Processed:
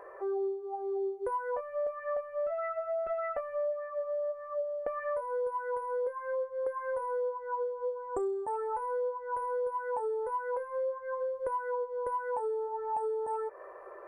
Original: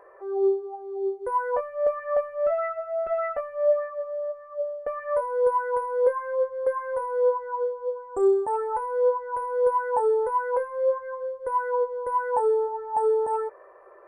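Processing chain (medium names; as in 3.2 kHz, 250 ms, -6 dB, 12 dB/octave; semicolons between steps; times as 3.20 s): compression 10:1, threshold -34 dBFS, peak gain reduction 18 dB; trim +3 dB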